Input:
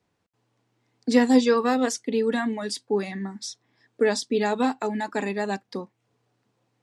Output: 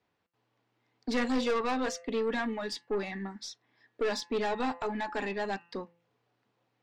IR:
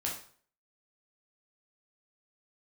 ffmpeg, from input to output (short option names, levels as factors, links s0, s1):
-af "lowpass=4100,lowshelf=f=370:g=-8,bandreject=f=171.1:t=h:w=4,bandreject=f=342.2:t=h:w=4,bandreject=f=513.3:t=h:w=4,bandreject=f=684.4:t=h:w=4,bandreject=f=855.5:t=h:w=4,bandreject=f=1026.6:t=h:w=4,bandreject=f=1197.7:t=h:w=4,bandreject=f=1368.8:t=h:w=4,bandreject=f=1539.9:t=h:w=4,bandreject=f=1711:t=h:w=4,bandreject=f=1882.1:t=h:w=4,bandreject=f=2053.2:t=h:w=4,bandreject=f=2224.3:t=h:w=4,bandreject=f=2395.4:t=h:w=4,bandreject=f=2566.5:t=h:w=4,bandreject=f=2737.6:t=h:w=4,bandreject=f=2908.7:t=h:w=4,aeval=exprs='(tanh(17.8*val(0)+0.25)-tanh(0.25))/17.8':c=same"